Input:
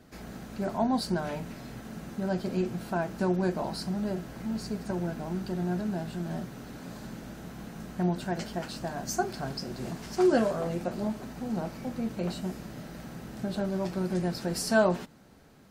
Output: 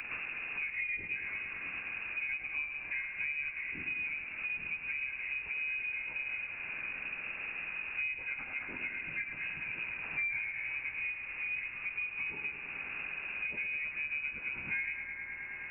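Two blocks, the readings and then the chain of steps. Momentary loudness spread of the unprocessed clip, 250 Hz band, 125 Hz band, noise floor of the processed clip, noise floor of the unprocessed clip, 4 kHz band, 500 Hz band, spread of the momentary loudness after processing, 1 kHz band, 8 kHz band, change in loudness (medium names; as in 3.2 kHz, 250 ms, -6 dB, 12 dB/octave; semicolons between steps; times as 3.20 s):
16 LU, -27.5 dB, -24.0 dB, -44 dBFS, -46 dBFS, -10.5 dB, -28.0 dB, 4 LU, -17.5 dB, under -35 dB, -4.5 dB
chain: frequency axis rescaled in octaves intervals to 81%; companded quantiser 6-bit; on a send: thinning echo 106 ms, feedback 75%, high-pass 270 Hz, level -7.5 dB; on the sum: frequency inversion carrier 2.7 kHz; three bands compressed up and down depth 100%; trim -6.5 dB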